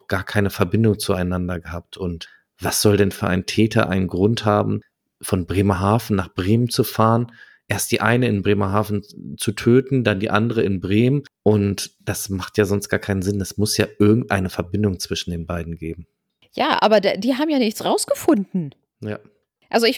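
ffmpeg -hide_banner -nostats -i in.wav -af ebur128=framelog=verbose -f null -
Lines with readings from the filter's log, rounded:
Integrated loudness:
  I:         -20.0 LUFS
  Threshold: -30.5 LUFS
Loudness range:
  LRA:         1.8 LU
  Threshold: -40.3 LUFS
  LRA low:   -21.3 LUFS
  LRA high:  -19.5 LUFS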